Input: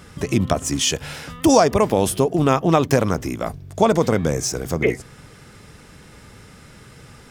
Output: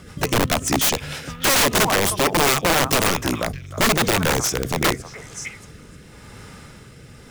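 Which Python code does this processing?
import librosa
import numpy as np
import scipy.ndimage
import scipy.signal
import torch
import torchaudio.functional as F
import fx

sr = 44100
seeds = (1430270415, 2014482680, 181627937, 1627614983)

p1 = fx.echo_stepped(x, sr, ms=312, hz=1100.0, octaves=1.4, feedback_pct=70, wet_db=-5.5)
p2 = fx.rotary_switch(p1, sr, hz=6.7, then_hz=0.9, switch_at_s=1.9)
p3 = fx.quant_float(p2, sr, bits=2)
p4 = p2 + F.gain(torch.from_numpy(p3), -5.0).numpy()
y = (np.mod(10.0 ** (11.5 / 20.0) * p4 + 1.0, 2.0) - 1.0) / 10.0 ** (11.5 / 20.0)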